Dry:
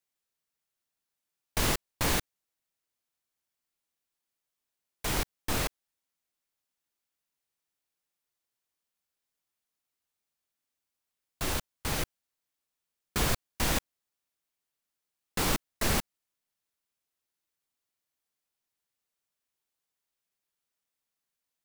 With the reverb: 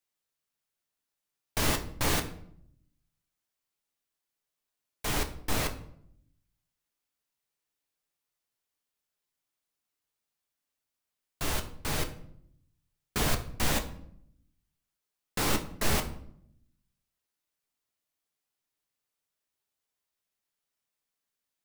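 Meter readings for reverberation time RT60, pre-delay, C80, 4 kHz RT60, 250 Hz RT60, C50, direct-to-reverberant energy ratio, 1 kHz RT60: 0.70 s, 7 ms, 16.0 dB, 0.45 s, 1.0 s, 12.5 dB, 5.0 dB, 0.60 s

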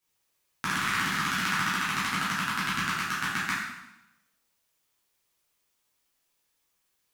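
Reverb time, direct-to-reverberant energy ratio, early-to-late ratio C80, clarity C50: 0.90 s, -10.0 dB, 3.5 dB, 0.5 dB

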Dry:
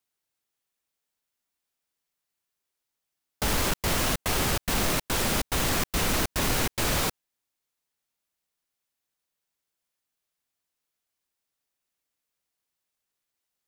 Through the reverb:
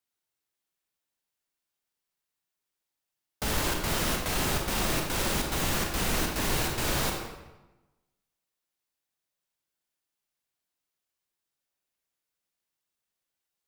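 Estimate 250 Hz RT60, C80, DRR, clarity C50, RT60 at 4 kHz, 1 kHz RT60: 1.1 s, 5.5 dB, 1.0 dB, 3.0 dB, 0.80 s, 1.1 s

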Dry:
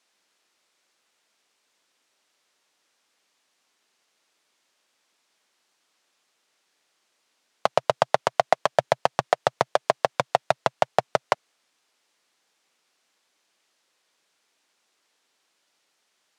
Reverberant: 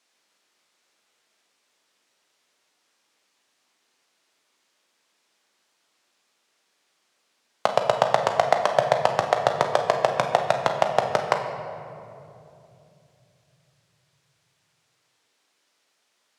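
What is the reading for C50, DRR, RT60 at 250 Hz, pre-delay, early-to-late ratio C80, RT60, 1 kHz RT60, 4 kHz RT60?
6.0 dB, 3.5 dB, 4.1 s, 9 ms, 7.0 dB, 2.8 s, 2.5 s, 1.4 s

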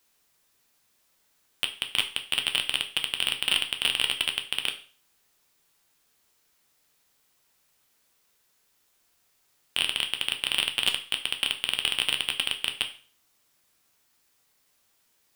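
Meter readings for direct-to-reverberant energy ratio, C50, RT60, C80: 5.0 dB, 12.5 dB, 0.40 s, 17.0 dB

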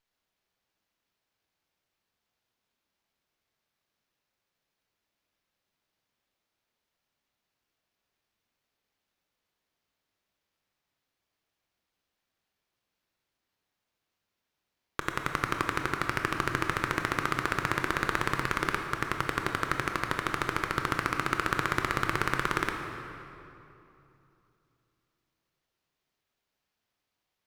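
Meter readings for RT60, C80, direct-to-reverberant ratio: 2.9 s, 5.5 dB, 3.5 dB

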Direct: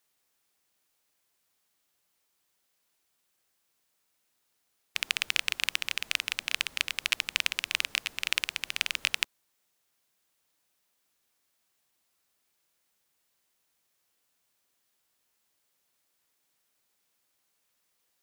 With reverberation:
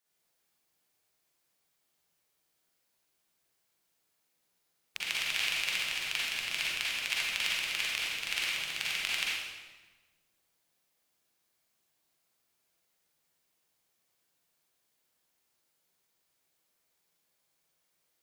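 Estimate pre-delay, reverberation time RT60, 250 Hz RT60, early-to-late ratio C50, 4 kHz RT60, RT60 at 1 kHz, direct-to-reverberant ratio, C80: 39 ms, 1.3 s, 1.7 s, -4.0 dB, 1.1 s, 1.2 s, -7.0 dB, 0.0 dB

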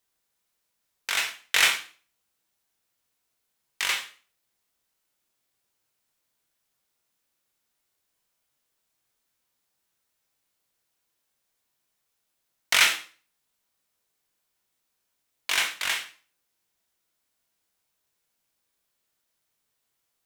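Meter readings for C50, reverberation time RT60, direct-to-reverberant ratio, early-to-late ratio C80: 11.0 dB, 0.40 s, 3.5 dB, 15.5 dB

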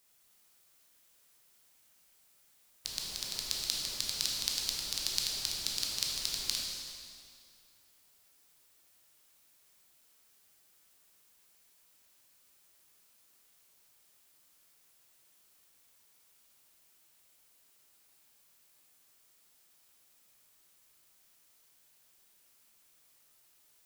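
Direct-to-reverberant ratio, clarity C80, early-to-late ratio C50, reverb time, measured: -2.5 dB, 1.5 dB, 0.0 dB, 2.3 s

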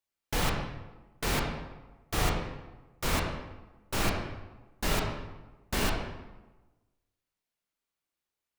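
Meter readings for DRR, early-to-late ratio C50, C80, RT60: -0.5 dB, 2.5 dB, 5.5 dB, 1.2 s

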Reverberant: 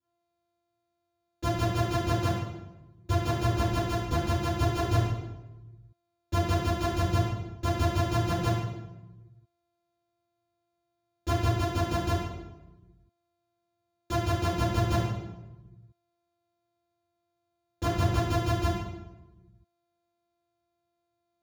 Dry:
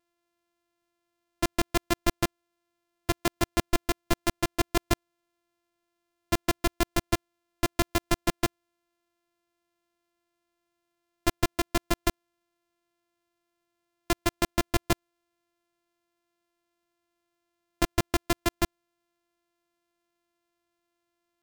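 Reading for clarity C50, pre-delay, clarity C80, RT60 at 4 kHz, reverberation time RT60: -0.5 dB, 3 ms, 2.5 dB, 0.80 s, 1.1 s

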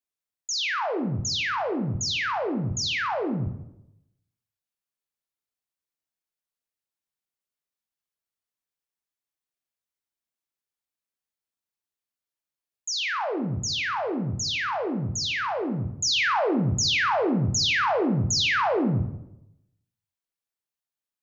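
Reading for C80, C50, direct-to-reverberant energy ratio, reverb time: 11.0 dB, 9.0 dB, 5.5 dB, 0.85 s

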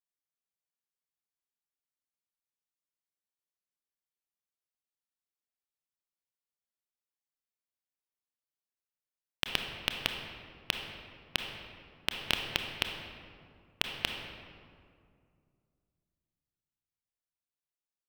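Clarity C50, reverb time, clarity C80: 4.0 dB, 2.3 s, 5.5 dB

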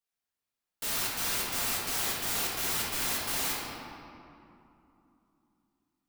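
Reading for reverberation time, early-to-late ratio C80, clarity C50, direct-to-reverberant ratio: 2.9 s, 0.5 dB, -1.5 dB, -7.0 dB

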